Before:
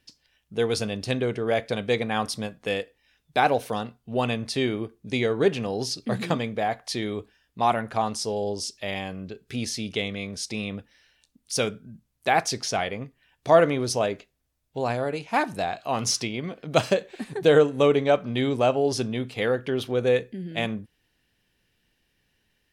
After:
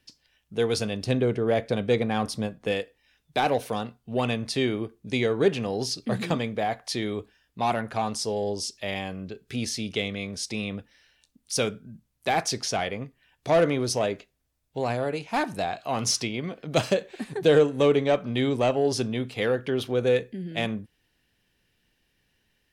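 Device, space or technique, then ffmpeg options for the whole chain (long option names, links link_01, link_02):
one-band saturation: -filter_complex "[0:a]asettb=1/sr,asplit=3[link_01][link_02][link_03];[link_01]atrim=end=1.044[link_04];[link_02]atrim=start=1.04:end=2.72,asetpts=PTS-STARTPTS,afade=type=in:duration=0.004:curve=qsin,afade=type=out:start_time=1.676:duration=0.004:curve=qsin,tiltshelf=frequency=920:gain=3.5[link_05];[link_03]atrim=start=2.716[link_06];[link_04][link_05]acrossfade=duration=0.004:curve1=hsin:curve2=qsin[link_07];[link_07][link_06]acrossfade=duration=0.004:curve1=qsin:curve2=hsin,acrossover=split=520|2500[link_08][link_09][link_10];[link_09]asoftclip=type=tanh:threshold=-22.5dB[link_11];[link_08][link_11][link_10]amix=inputs=3:normalize=0"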